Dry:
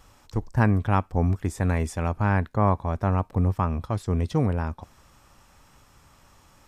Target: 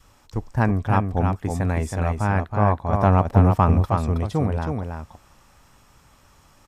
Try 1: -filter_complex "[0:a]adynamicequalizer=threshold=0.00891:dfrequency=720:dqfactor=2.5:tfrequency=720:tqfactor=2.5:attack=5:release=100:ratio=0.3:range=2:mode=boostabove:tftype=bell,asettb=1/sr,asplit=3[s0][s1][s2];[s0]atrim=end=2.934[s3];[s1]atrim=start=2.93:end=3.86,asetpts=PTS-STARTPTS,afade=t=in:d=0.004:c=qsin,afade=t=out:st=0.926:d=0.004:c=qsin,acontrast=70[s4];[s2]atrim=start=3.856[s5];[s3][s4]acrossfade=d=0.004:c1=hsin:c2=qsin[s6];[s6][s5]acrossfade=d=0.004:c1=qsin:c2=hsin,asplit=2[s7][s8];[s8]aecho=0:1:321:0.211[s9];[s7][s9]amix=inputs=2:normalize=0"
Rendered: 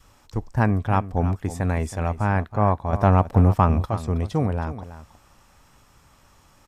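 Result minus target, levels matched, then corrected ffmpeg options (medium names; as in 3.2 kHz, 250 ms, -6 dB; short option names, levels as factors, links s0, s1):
echo-to-direct -8.5 dB
-filter_complex "[0:a]adynamicequalizer=threshold=0.00891:dfrequency=720:dqfactor=2.5:tfrequency=720:tqfactor=2.5:attack=5:release=100:ratio=0.3:range=2:mode=boostabove:tftype=bell,asettb=1/sr,asplit=3[s0][s1][s2];[s0]atrim=end=2.934[s3];[s1]atrim=start=2.93:end=3.86,asetpts=PTS-STARTPTS,afade=t=in:d=0.004:c=qsin,afade=t=out:st=0.926:d=0.004:c=qsin,acontrast=70[s4];[s2]atrim=start=3.856[s5];[s3][s4]acrossfade=d=0.004:c1=hsin:c2=qsin[s6];[s6][s5]acrossfade=d=0.004:c1=qsin:c2=hsin,asplit=2[s7][s8];[s8]aecho=0:1:321:0.562[s9];[s7][s9]amix=inputs=2:normalize=0"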